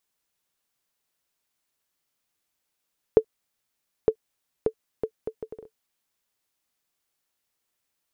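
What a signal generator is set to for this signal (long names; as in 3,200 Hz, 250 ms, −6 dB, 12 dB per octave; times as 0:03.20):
bouncing ball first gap 0.91 s, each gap 0.64, 441 Hz, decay 75 ms −4.5 dBFS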